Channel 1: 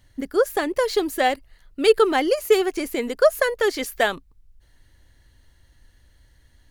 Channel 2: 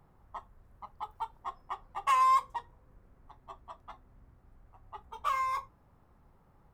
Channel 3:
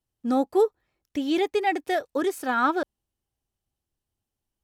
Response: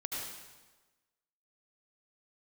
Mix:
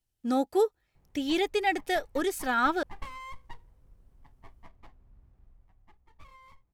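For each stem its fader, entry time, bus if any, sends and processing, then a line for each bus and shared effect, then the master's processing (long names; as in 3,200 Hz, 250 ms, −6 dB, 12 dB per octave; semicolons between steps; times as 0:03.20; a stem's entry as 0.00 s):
muted
0:05.44 −6 dB → 0:06.04 −17.5 dB, 0.95 s, no send, downward compressor 6 to 1, threshold −32 dBFS, peak gain reduction 10 dB; windowed peak hold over 17 samples
−1.5 dB, 0.00 s, no send, tilt shelving filter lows −3.5 dB, about 1,300 Hz; notch filter 1,100 Hz, Q 6.7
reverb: not used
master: low-shelf EQ 76 Hz +12 dB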